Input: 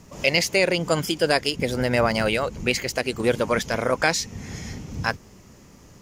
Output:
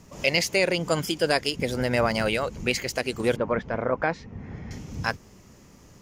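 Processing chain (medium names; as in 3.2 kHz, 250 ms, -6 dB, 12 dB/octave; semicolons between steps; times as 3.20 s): 3.36–4.71 s: low-pass 1.5 kHz 12 dB/octave; trim -2.5 dB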